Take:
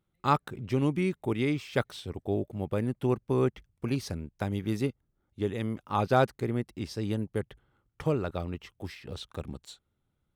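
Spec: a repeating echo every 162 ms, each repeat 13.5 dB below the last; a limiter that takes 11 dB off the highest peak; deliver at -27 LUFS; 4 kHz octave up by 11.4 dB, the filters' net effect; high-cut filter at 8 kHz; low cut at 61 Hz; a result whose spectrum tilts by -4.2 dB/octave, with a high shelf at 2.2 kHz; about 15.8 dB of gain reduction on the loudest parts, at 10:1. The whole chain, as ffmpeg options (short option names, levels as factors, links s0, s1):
-af "highpass=61,lowpass=8000,highshelf=f=2200:g=6.5,equalizer=f=4000:t=o:g=8,acompressor=threshold=0.0224:ratio=10,alimiter=level_in=1.5:limit=0.0631:level=0:latency=1,volume=0.668,aecho=1:1:162|324:0.211|0.0444,volume=4.73"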